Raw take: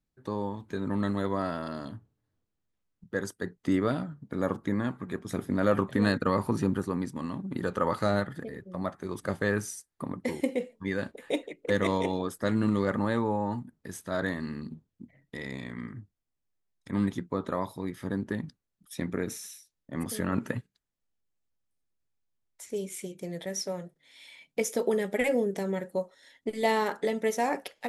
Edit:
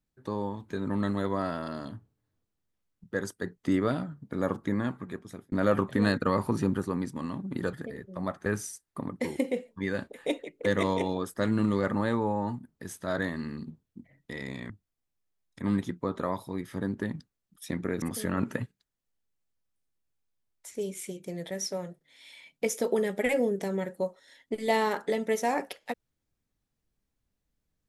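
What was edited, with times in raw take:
4.94–5.52 s: fade out
7.73–8.31 s: delete
9.04–9.50 s: delete
15.74–15.99 s: delete
19.31–19.97 s: delete

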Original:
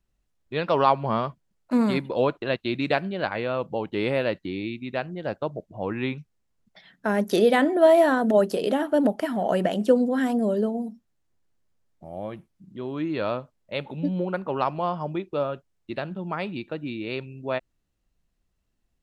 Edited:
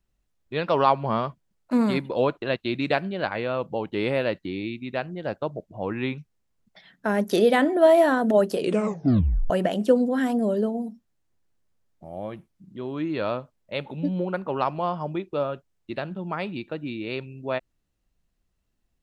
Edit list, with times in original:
8.57 s: tape stop 0.93 s

